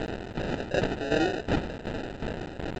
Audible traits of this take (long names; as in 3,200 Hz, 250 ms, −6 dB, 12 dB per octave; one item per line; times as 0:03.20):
a quantiser's noise floor 6 bits, dither triangular
tremolo saw down 2.7 Hz, depth 75%
aliases and images of a low sample rate 1,100 Hz, jitter 0%
G.722